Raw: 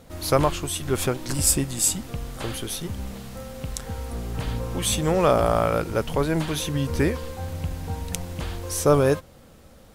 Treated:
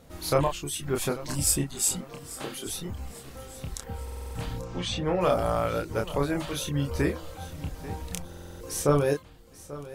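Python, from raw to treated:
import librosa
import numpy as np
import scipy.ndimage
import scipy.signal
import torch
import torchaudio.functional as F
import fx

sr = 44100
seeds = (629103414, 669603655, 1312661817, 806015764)

p1 = fx.highpass(x, sr, hz=190.0, slope=24, at=(1.99, 2.66))
p2 = fx.dereverb_blind(p1, sr, rt60_s=0.7)
p3 = fx.lowpass(p2, sr, hz=fx.line((4.61, 8000.0), (5.2, 3600.0)), slope=24, at=(4.61, 5.2), fade=0.02)
p4 = np.clip(p3, -10.0 ** (-13.0 / 20.0), 10.0 ** (-13.0 / 20.0))
p5 = p3 + (p4 * librosa.db_to_amplitude(-9.0))
p6 = fx.doubler(p5, sr, ms=28.0, db=-4.0)
p7 = fx.echo_feedback(p6, sr, ms=839, feedback_pct=41, wet_db=-17.0)
p8 = fx.buffer_glitch(p7, sr, at_s=(4.03, 8.28), block=2048, repeats=6)
y = p8 * librosa.db_to_amplitude(-7.5)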